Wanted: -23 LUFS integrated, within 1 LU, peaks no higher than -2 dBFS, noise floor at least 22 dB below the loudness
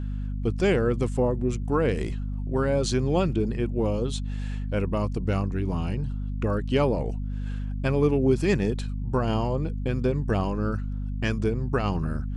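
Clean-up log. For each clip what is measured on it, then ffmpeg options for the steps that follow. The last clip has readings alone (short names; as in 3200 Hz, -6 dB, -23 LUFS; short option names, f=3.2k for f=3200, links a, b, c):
hum 50 Hz; harmonics up to 250 Hz; hum level -27 dBFS; loudness -26.5 LUFS; peak -9.0 dBFS; loudness target -23.0 LUFS
-> -af "bandreject=f=50:t=h:w=6,bandreject=f=100:t=h:w=6,bandreject=f=150:t=h:w=6,bandreject=f=200:t=h:w=6,bandreject=f=250:t=h:w=6"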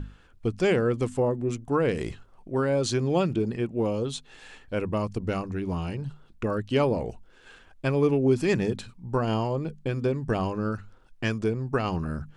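hum none; loudness -27.5 LUFS; peak -11.5 dBFS; loudness target -23.0 LUFS
-> -af "volume=4.5dB"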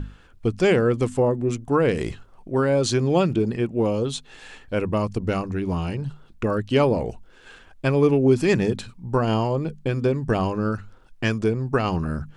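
loudness -23.0 LUFS; peak -7.0 dBFS; noise floor -51 dBFS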